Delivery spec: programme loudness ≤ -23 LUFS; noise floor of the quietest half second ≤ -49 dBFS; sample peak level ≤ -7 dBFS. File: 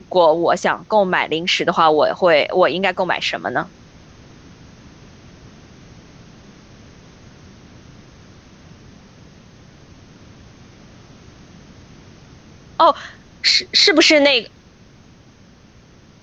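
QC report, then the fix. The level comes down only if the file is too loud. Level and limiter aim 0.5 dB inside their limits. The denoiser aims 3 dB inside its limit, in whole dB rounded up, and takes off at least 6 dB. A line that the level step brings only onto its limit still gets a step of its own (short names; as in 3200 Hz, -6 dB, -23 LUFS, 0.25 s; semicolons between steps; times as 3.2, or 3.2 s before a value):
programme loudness -15.5 LUFS: fail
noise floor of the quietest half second -47 dBFS: fail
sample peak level -2.5 dBFS: fail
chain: gain -8 dB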